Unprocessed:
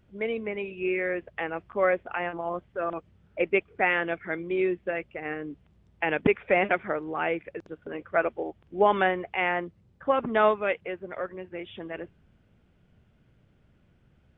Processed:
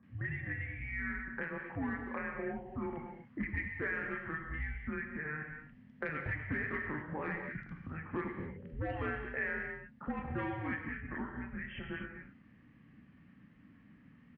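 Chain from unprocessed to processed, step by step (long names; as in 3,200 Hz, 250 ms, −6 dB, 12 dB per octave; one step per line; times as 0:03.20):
multiband delay without the direct sound lows, highs 30 ms, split 1,600 Hz
soft clipping −15 dBFS, distortion −18 dB
frequency shifter −310 Hz
parametric band 1,800 Hz +13 dB 0.54 octaves
downward compressor 3 to 1, threshold −41 dBFS, peak gain reduction 18.5 dB
high-pass filter 55 Hz
high-frequency loss of the air 190 metres
reverb whose tail is shaped and stops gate 280 ms flat, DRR 2.5 dB
every ending faded ahead of time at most 240 dB per second
level +1 dB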